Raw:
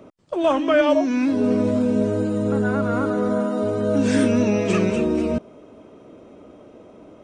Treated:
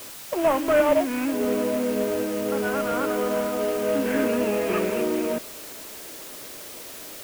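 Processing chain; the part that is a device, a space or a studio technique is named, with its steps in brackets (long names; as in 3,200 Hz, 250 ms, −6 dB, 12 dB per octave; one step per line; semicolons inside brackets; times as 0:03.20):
army field radio (band-pass filter 340–3,200 Hz; variable-slope delta modulation 16 kbit/s; white noise bed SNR 15 dB)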